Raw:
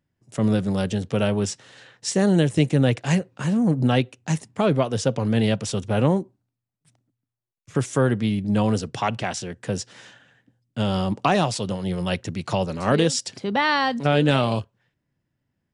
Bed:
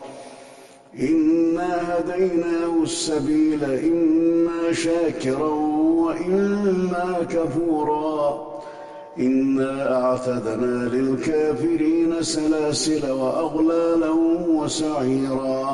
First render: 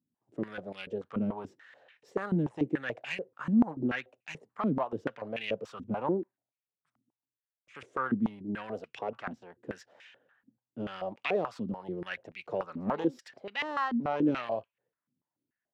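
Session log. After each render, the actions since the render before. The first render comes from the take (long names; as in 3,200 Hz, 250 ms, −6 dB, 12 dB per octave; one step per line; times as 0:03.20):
phase distortion by the signal itself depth 0.09 ms
band-pass on a step sequencer 6.9 Hz 240–2,400 Hz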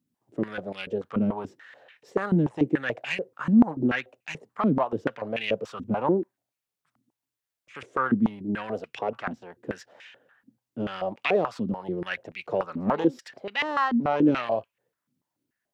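level +6.5 dB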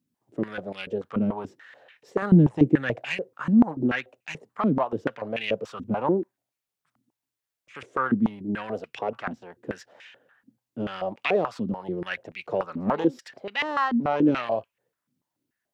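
0:02.22–0:03.04: low-shelf EQ 260 Hz +10.5 dB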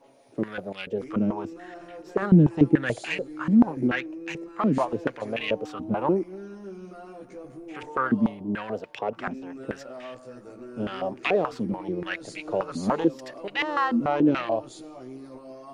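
mix in bed −20 dB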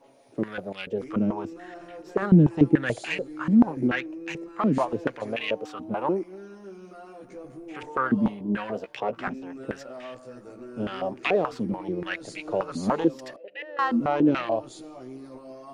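0:05.35–0:07.23: low-shelf EQ 230 Hz −9 dB
0:08.15–0:09.31: double-tracking delay 15 ms −6 dB
0:13.36–0:13.79: formant filter e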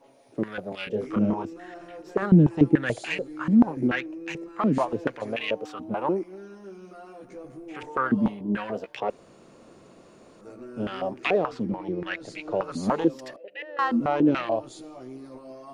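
0:00.69–0:01.43: double-tracking delay 28 ms −3 dB
0:09.10–0:10.41: fill with room tone
0:11.38–0:12.64: high-frequency loss of the air 53 metres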